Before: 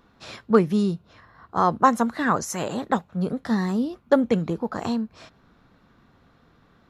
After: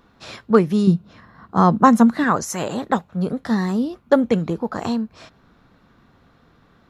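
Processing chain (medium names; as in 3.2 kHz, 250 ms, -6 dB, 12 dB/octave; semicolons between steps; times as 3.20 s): 0.87–2.24 s: peaking EQ 200 Hz +11 dB 0.91 oct; trim +3 dB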